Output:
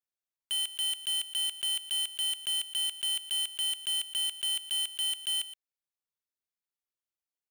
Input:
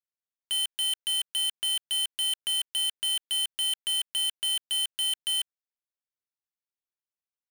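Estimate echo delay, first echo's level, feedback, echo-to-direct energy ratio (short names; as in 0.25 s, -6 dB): 0.12 s, -14.5 dB, no steady repeat, -14.5 dB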